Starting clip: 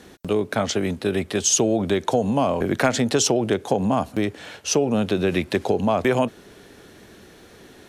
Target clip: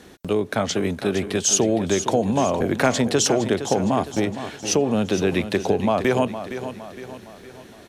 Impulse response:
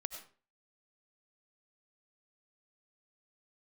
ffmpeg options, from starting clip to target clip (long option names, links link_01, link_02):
-af "aecho=1:1:462|924|1386|1848|2310:0.282|0.132|0.0623|0.0293|0.0138"